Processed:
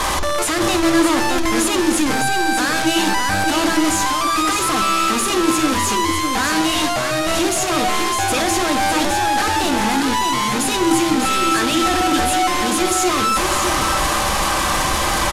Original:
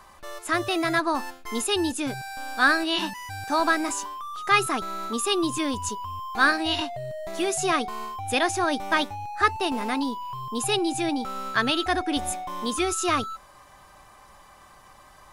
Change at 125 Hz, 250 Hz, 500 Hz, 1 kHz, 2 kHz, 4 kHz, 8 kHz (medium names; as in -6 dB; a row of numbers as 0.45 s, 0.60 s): +11.0 dB, +10.0 dB, +8.0 dB, +9.5 dB, +6.0 dB, +9.0 dB, +13.0 dB